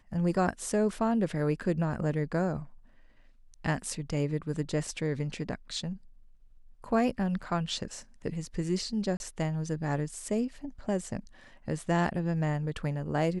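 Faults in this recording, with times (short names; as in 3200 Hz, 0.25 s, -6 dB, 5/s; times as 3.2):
9.17–9.2 gap 31 ms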